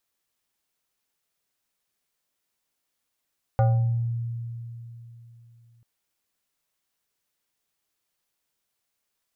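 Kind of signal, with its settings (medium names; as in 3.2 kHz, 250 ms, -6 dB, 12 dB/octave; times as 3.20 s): FM tone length 2.24 s, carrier 117 Hz, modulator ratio 5.67, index 0.85, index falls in 0.70 s exponential, decay 3.34 s, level -15.5 dB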